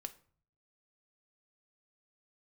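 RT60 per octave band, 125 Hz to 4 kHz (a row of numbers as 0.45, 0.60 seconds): 0.90, 0.65, 0.50, 0.50, 0.40, 0.30 seconds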